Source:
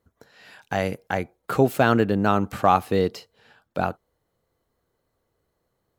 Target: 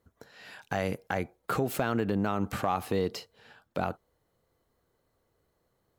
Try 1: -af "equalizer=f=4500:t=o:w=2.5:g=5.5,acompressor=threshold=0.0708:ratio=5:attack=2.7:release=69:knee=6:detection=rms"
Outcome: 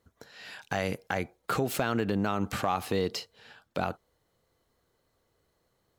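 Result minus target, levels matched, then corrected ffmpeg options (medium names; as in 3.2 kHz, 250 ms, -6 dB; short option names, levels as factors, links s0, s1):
4 kHz band +4.5 dB
-af "acompressor=threshold=0.0708:ratio=5:attack=2.7:release=69:knee=6:detection=rms"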